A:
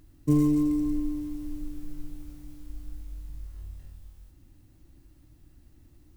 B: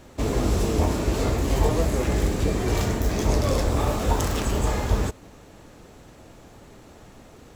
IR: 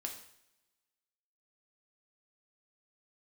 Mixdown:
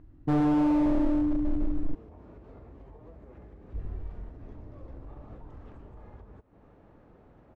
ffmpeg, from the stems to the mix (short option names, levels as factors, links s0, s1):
-filter_complex "[0:a]dynaudnorm=f=120:g=13:m=2.24,volume=1.33,asplit=3[s0][s1][s2];[s0]atrim=end=1.95,asetpts=PTS-STARTPTS,afade=t=out:st=1.946:d=0.004:c=hsin[s3];[s1]atrim=start=1.95:end=3.74,asetpts=PTS-STARTPTS,volume=0[s4];[s2]atrim=start=3.74,asetpts=PTS-STARTPTS,afade=t=in:d=0.004:c=hsin[s5];[s3][s4][s5]concat=n=3:v=0:a=1[s6];[1:a]alimiter=limit=0.1:level=0:latency=1:release=440,acompressor=threshold=0.0126:ratio=6,adelay=1300,volume=0.376[s7];[s6][s7]amix=inputs=2:normalize=0,lowpass=1400,volume=11.9,asoftclip=hard,volume=0.0841"